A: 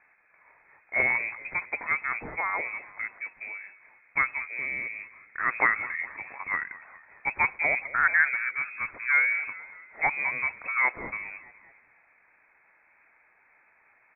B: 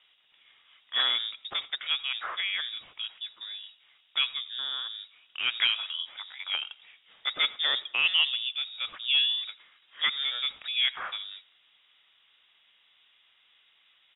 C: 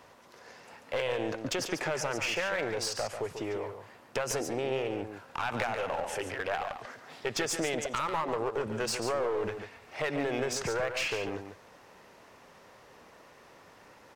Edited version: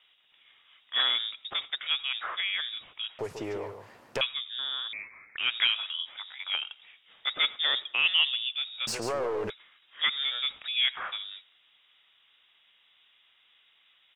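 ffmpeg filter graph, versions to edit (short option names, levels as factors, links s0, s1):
-filter_complex "[2:a]asplit=2[s0][s1];[1:a]asplit=4[s2][s3][s4][s5];[s2]atrim=end=3.192[s6];[s0]atrim=start=3.188:end=4.212[s7];[s3]atrim=start=4.208:end=4.932[s8];[0:a]atrim=start=4.928:end=5.372[s9];[s4]atrim=start=5.368:end=8.872[s10];[s1]atrim=start=8.868:end=9.502[s11];[s5]atrim=start=9.498[s12];[s6][s7]acrossfade=d=0.004:c1=hsin:c2=hsin[s13];[s13][s8]acrossfade=d=0.004:c1=hsin:c2=hsin[s14];[s14][s9]acrossfade=d=0.004:c1=hsin:c2=hsin[s15];[s15][s10]acrossfade=d=0.004:c1=hsin:c2=hsin[s16];[s16][s11]acrossfade=d=0.004:c1=hsin:c2=hsin[s17];[s17][s12]acrossfade=d=0.004:c1=hsin:c2=hsin"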